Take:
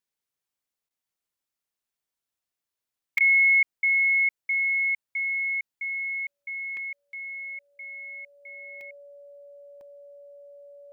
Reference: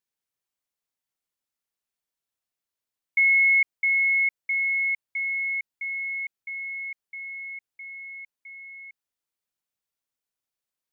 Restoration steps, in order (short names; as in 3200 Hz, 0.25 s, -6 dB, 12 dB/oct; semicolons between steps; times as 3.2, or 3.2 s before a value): notch 570 Hz, Q 30; interpolate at 1.74/3.18/6.77/7.13/8.81/9.81, 1.4 ms; interpolate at 0.89/3.19, 14 ms